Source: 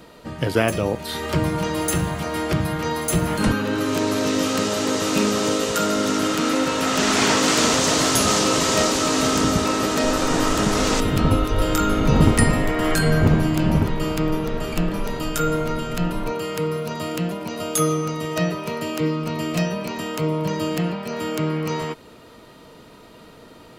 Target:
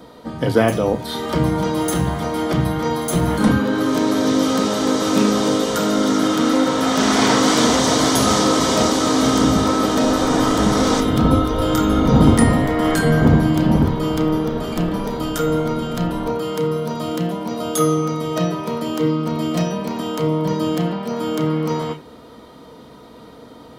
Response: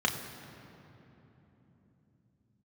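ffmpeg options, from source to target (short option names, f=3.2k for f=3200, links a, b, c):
-filter_complex "[0:a]asplit=2[a][b];[1:a]atrim=start_sample=2205,afade=t=out:st=0.14:d=0.01,atrim=end_sample=6615,lowshelf=f=160:g=10[c];[b][c]afir=irnorm=-1:irlink=0,volume=-11dB[d];[a][d]amix=inputs=2:normalize=0"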